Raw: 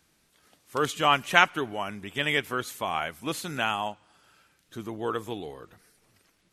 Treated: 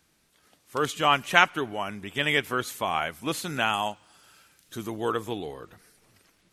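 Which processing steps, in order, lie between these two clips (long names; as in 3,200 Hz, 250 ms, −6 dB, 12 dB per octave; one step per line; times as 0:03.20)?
0:03.73–0:05.12: high-shelf EQ 4,000 Hz +8.5 dB
in parallel at 0 dB: speech leveller within 4 dB 2 s
on the sum: level −5 dB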